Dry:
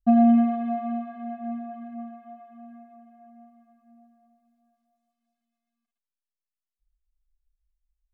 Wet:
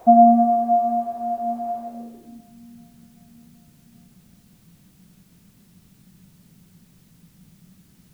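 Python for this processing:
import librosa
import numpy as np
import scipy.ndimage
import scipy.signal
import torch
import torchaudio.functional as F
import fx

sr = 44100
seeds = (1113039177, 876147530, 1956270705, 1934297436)

y = fx.dmg_noise_colour(x, sr, seeds[0], colour='white', level_db=-40.0)
y = fx.filter_sweep_lowpass(y, sr, from_hz=720.0, to_hz=180.0, start_s=1.84, end_s=2.56, q=5.3)
y = fx.quant_dither(y, sr, seeds[1], bits=10, dither='triangular')
y = fx.echo_wet_highpass(y, sr, ms=386, feedback_pct=68, hz=1800.0, wet_db=-21.0)
y = y * librosa.db_to_amplitude(-1.5)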